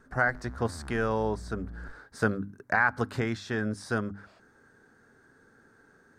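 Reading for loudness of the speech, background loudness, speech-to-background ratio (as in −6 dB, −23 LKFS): −30.0 LKFS, −45.5 LKFS, 15.5 dB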